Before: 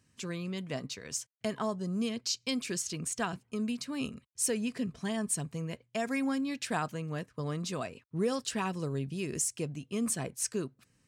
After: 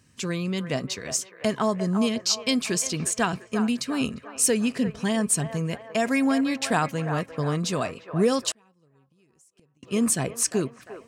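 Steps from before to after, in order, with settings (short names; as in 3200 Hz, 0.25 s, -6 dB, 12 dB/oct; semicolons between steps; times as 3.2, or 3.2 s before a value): band-limited delay 0.35 s, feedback 50%, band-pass 1000 Hz, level -8 dB; 8.51–9.83 flipped gate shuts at -32 dBFS, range -37 dB; gain +9 dB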